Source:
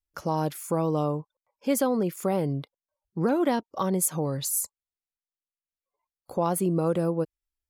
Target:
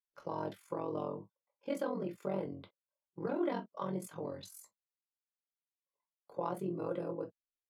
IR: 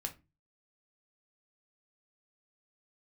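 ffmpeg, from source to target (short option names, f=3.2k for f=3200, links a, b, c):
-filter_complex "[0:a]acrossover=split=190 4200:gain=0.0794 1 0.158[a][b][c];[a][b][c]amix=inputs=3:normalize=0,tremolo=f=44:d=1[d];[1:a]atrim=start_sample=2205,atrim=end_sample=3528,asetrate=52920,aresample=44100[e];[d][e]afir=irnorm=-1:irlink=0,volume=-4.5dB"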